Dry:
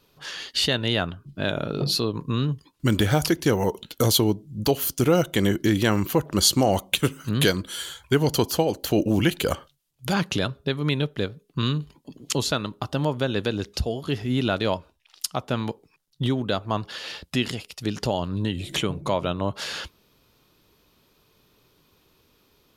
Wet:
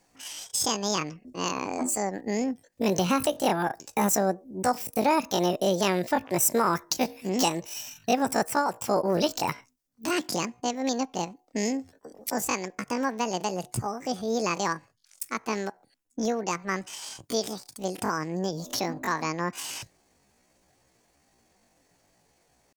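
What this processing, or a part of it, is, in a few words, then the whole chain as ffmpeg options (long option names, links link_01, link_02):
chipmunk voice: -af "asetrate=78577,aresample=44100,atempo=0.561231,volume=-3.5dB"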